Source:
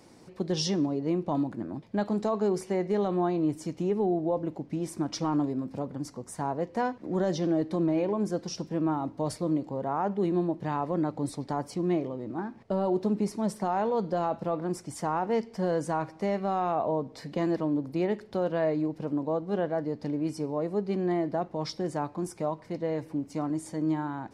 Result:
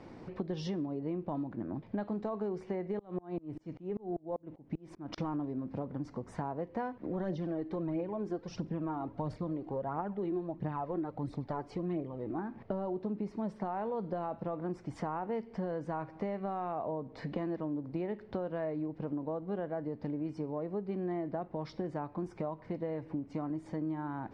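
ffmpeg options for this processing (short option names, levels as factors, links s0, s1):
-filter_complex "[0:a]asettb=1/sr,asplit=3[s0][s1][s2];[s0]atrim=end=2.994[s3];[s1]atrim=start=2.99:end=5.18,asetpts=PTS-STARTPTS,afade=t=in:d=0.004:c=qsin,afade=t=out:st=2.186:d=0.004:c=qsin,aeval=exprs='val(0)*pow(10,-33*if(lt(mod(-5.1*n/s,1),2*abs(-5.1)/1000),1-mod(-5.1*n/s,1)/(2*abs(-5.1)/1000),(mod(-5.1*n/s,1)-2*abs(-5.1)/1000)/(1-2*abs(-5.1)/1000))/20)':c=same[s4];[s2]atrim=start=5.176[s5];[s3][s4]acrossfade=d=0.004:c1=hsin:c2=qsin[s6];[s6][s5]acrossfade=d=0.004:c1=qsin:c2=hsin,asplit=3[s7][s8][s9];[s7]afade=t=out:st=7.08:d=0.02[s10];[s8]aphaser=in_gain=1:out_gain=1:delay=3:decay=0.5:speed=1.5:type=triangular,afade=t=in:st=7.08:d=0.02,afade=t=out:st=12.36:d=0.02[s11];[s9]afade=t=in:st=12.36:d=0.02[s12];[s10][s11][s12]amix=inputs=3:normalize=0,lowpass=2500,lowshelf=f=63:g=8,acompressor=threshold=0.0112:ratio=5,volume=1.68"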